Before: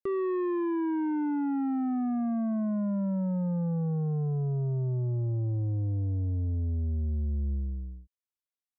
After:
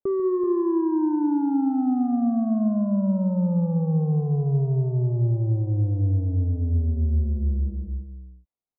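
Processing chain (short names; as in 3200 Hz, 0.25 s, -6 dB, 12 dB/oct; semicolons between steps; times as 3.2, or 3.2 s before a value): LPF 1000 Hz 24 dB/oct; tapped delay 51/143/382 ms -19/-12/-9.5 dB; gain +6 dB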